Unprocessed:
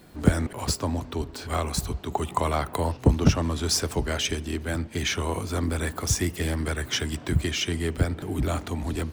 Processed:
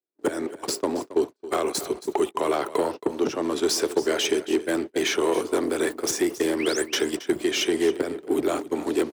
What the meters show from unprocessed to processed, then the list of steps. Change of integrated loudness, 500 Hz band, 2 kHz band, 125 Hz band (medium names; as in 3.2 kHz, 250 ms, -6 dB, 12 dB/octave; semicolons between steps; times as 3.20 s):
+1.5 dB, +8.0 dB, +1.5 dB, -20.0 dB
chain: gate -29 dBFS, range -56 dB; compression 10:1, threshold -27 dBFS, peak gain reduction 16 dB; painted sound rise, 6.59–6.84 s, 1.9–9.9 kHz -39 dBFS; saturation -26.5 dBFS, distortion -14 dB; resonant high-pass 370 Hz, resonance Q 3.4; delay 273 ms -15.5 dB; trim +8 dB